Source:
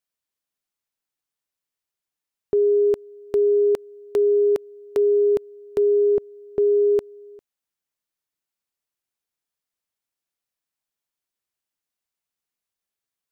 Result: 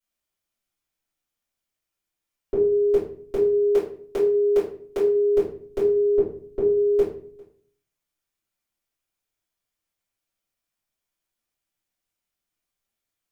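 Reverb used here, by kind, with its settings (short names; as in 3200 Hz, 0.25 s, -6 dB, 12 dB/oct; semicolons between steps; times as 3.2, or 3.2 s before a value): shoebox room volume 46 m³, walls mixed, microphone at 2.8 m; gain -9.5 dB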